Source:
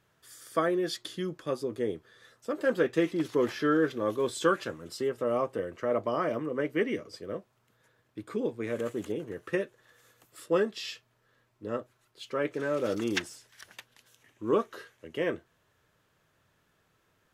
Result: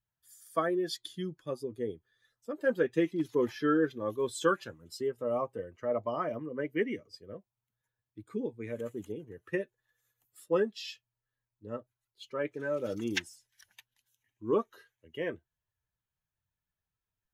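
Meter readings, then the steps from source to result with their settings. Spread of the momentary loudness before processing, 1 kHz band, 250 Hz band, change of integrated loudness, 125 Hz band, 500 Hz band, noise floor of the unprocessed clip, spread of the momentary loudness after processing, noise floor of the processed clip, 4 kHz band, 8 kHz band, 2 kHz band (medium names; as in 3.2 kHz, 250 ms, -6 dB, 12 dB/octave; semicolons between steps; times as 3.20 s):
16 LU, -3.0 dB, -2.5 dB, -2.5 dB, -2.5 dB, -3.0 dB, -71 dBFS, 16 LU, under -85 dBFS, -3.0 dB, -3.0 dB, -3.0 dB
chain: expander on every frequency bin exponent 1.5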